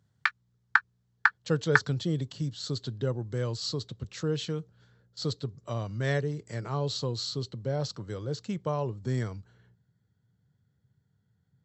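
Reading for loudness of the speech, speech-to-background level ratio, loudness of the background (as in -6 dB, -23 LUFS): -32.5 LUFS, -4.0 dB, -28.5 LUFS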